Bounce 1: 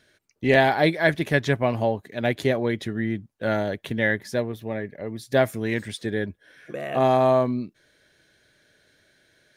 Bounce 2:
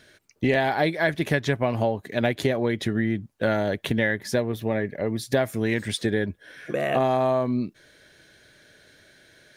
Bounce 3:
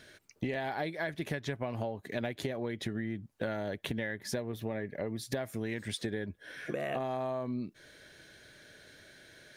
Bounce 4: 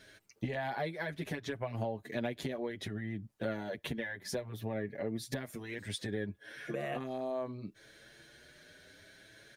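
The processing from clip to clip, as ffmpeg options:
ffmpeg -i in.wav -af "acompressor=threshold=-27dB:ratio=5,volume=7dB" out.wav
ffmpeg -i in.wav -af "acompressor=threshold=-33dB:ratio=4,volume=-1dB" out.wav
ffmpeg -i in.wav -filter_complex "[0:a]asplit=2[link_01][link_02];[link_02]adelay=7.4,afreqshift=0.66[link_03];[link_01][link_03]amix=inputs=2:normalize=1,volume=1dB" out.wav

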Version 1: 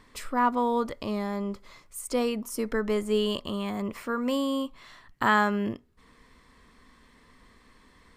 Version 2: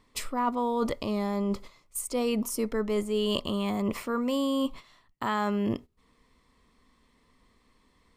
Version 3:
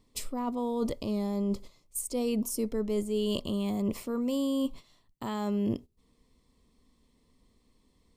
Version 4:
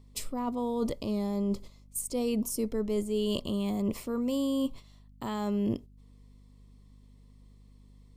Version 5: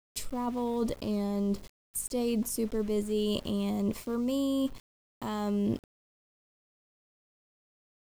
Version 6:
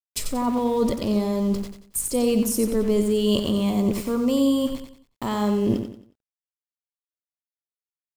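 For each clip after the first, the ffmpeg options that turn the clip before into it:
ffmpeg -i in.wav -af "agate=range=-15dB:threshold=-45dB:ratio=16:detection=peak,equalizer=frequency=1600:width_type=o:width=0.42:gain=-8.5,areverse,acompressor=threshold=-33dB:ratio=6,areverse,volume=8dB" out.wav
ffmpeg -i in.wav -af "equalizer=frequency=1500:width_type=o:width=1.7:gain=-14" out.wav
ffmpeg -i in.wav -af "aeval=exprs='val(0)+0.002*(sin(2*PI*50*n/s)+sin(2*PI*2*50*n/s)/2+sin(2*PI*3*50*n/s)/3+sin(2*PI*4*50*n/s)/4+sin(2*PI*5*50*n/s)/5)':channel_layout=same" out.wav
ffmpeg -i in.wav -af "aeval=exprs='val(0)*gte(abs(val(0)),0.00531)':channel_layout=same" out.wav
ffmpeg -i in.wav -af "aecho=1:1:91|182|273|364:0.422|0.148|0.0517|0.0181,volume=8dB" out.wav

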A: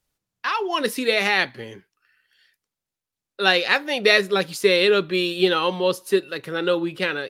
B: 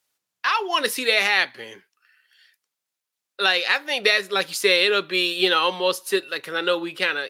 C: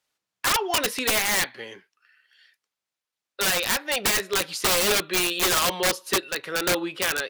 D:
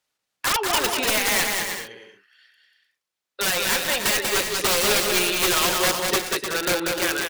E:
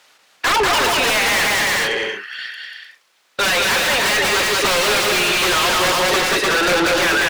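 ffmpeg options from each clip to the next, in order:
ffmpeg -i in.wav -af "highpass=frequency=910:poles=1,alimiter=limit=-10dB:level=0:latency=1:release=344,volume=4.5dB" out.wav
ffmpeg -i in.wav -af "highshelf=frequency=8800:gain=-12,aeval=exprs='(mod(5.96*val(0)+1,2)-1)/5.96':channel_layout=same" out.wav
ffmpeg -i in.wav -af "aecho=1:1:190|304|372.4|413.4|438.1:0.631|0.398|0.251|0.158|0.1" out.wav
ffmpeg -i in.wav -filter_complex "[0:a]asplit=2[link_01][link_02];[link_02]highpass=frequency=720:poles=1,volume=36dB,asoftclip=type=tanh:threshold=-9dB[link_03];[link_01][link_03]amix=inputs=2:normalize=0,lowpass=frequency=3200:poles=1,volume=-6dB" out.wav

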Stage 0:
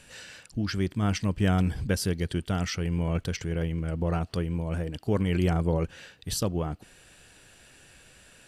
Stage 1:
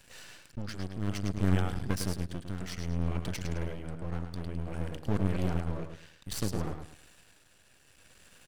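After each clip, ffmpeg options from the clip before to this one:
ffmpeg -i in.wav -af "aecho=1:1:106|212|318:0.473|0.123|0.032,aeval=exprs='max(val(0),0)':channel_layout=same,tremolo=f=0.59:d=0.52" out.wav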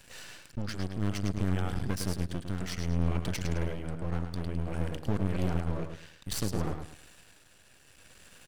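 ffmpeg -i in.wav -af "alimiter=limit=-20.5dB:level=0:latency=1:release=266,volume=3dB" out.wav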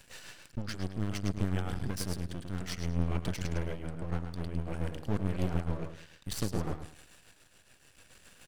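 ffmpeg -i in.wav -af "tremolo=f=7:d=0.5" out.wav

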